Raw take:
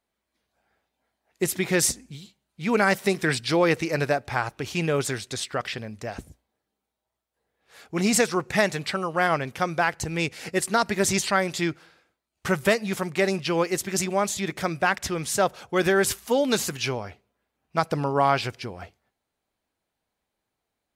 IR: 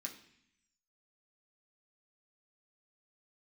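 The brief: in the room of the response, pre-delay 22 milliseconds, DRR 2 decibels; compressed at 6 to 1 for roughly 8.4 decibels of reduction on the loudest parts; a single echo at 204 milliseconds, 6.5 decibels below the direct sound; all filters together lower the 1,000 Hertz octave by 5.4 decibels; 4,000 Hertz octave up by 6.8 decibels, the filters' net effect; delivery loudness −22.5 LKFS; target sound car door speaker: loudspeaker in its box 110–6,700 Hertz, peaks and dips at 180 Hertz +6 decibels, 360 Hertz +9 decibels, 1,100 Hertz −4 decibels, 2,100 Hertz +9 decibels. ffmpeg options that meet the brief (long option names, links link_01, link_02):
-filter_complex "[0:a]equalizer=frequency=1000:width_type=o:gain=-7.5,equalizer=frequency=4000:width_type=o:gain=8.5,acompressor=threshold=-26dB:ratio=6,aecho=1:1:204:0.473,asplit=2[link_01][link_02];[1:a]atrim=start_sample=2205,adelay=22[link_03];[link_02][link_03]afir=irnorm=-1:irlink=0,volume=1dB[link_04];[link_01][link_04]amix=inputs=2:normalize=0,highpass=110,equalizer=frequency=180:width_type=q:width=4:gain=6,equalizer=frequency=360:width_type=q:width=4:gain=9,equalizer=frequency=1100:width_type=q:width=4:gain=-4,equalizer=frequency=2100:width_type=q:width=4:gain=9,lowpass=frequency=6700:width=0.5412,lowpass=frequency=6700:width=1.3066,volume=1.5dB"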